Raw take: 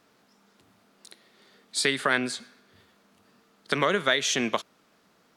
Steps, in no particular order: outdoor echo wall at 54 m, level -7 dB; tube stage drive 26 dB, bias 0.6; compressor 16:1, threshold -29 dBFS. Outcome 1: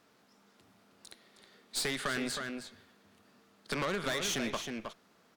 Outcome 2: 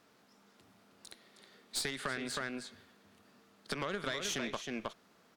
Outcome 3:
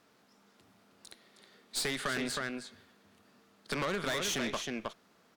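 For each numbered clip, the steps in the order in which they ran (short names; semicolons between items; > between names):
tube stage > outdoor echo > compressor; outdoor echo > compressor > tube stage; outdoor echo > tube stage > compressor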